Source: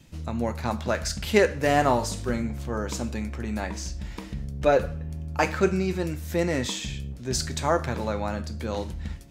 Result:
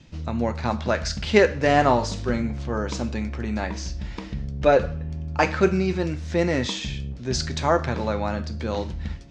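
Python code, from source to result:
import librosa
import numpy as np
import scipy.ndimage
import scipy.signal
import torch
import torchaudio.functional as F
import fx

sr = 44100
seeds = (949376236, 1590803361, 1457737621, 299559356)

y = scipy.signal.sosfilt(scipy.signal.butter(4, 6000.0, 'lowpass', fs=sr, output='sos'), x)
y = F.gain(torch.from_numpy(y), 3.0).numpy()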